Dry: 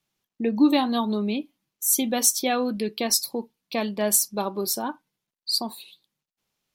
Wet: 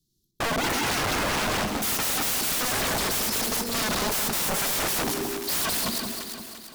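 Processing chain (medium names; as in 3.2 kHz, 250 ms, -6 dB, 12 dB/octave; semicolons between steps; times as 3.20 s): backward echo that repeats 105 ms, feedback 50%, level -2.5 dB; elliptic band-stop 360–4100 Hz, stop band 40 dB; bass shelf 120 Hz +9.5 dB; waveshaping leveller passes 2; reverse; compression 12:1, threshold -20 dBFS, peak gain reduction 14 dB; reverse; feedback echo behind a band-pass 80 ms, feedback 77%, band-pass 820 Hz, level -9 dB; integer overflow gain 27 dB; echo whose repeats swap between lows and highs 172 ms, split 1.1 kHz, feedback 65%, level -6 dB; sine folder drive 5 dB, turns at -22.5 dBFS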